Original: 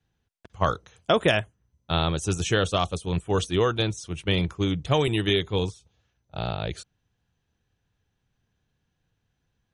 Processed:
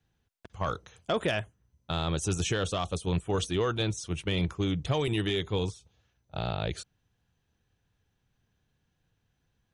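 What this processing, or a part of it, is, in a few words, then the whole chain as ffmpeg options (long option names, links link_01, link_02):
soft clipper into limiter: -af "asoftclip=type=tanh:threshold=-11dB,alimiter=limit=-20dB:level=0:latency=1:release=88"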